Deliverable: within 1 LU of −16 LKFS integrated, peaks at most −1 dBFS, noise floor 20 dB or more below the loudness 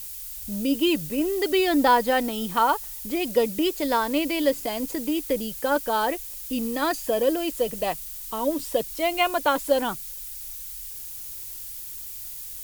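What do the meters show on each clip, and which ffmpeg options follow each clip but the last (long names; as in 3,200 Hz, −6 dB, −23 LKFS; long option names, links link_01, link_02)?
background noise floor −37 dBFS; target noise floor −46 dBFS; integrated loudness −25.5 LKFS; sample peak −8.0 dBFS; target loudness −16.0 LKFS
→ -af "afftdn=noise_reduction=9:noise_floor=-37"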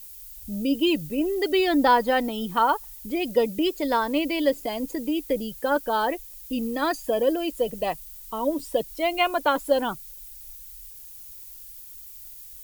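background noise floor −44 dBFS; target noise floor −45 dBFS
→ -af "afftdn=noise_reduction=6:noise_floor=-44"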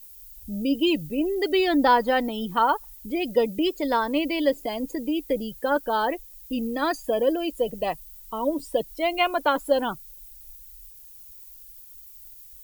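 background noise floor −47 dBFS; integrated loudness −25.0 LKFS; sample peak −8.5 dBFS; target loudness −16.0 LKFS
→ -af "volume=9dB,alimiter=limit=-1dB:level=0:latency=1"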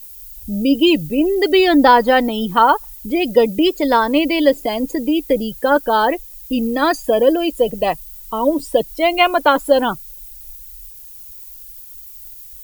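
integrated loudness −16.0 LKFS; sample peak −1.0 dBFS; background noise floor −38 dBFS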